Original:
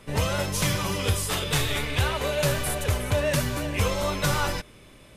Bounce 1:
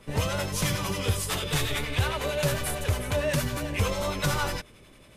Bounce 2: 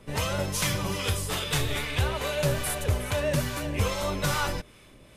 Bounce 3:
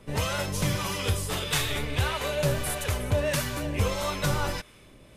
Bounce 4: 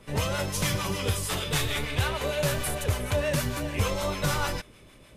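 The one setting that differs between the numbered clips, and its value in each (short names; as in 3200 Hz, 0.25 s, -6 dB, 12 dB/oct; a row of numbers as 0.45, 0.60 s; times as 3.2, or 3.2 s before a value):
harmonic tremolo, rate: 11, 2.4, 1.6, 6.6 Hz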